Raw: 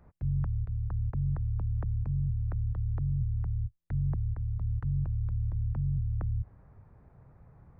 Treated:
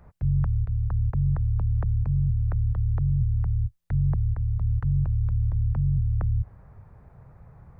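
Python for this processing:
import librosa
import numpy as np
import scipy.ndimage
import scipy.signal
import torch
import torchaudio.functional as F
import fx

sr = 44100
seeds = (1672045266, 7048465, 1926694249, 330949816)

y = fx.peak_eq(x, sr, hz=290.0, db=-5.5, octaves=0.89)
y = y * librosa.db_to_amplitude(7.0)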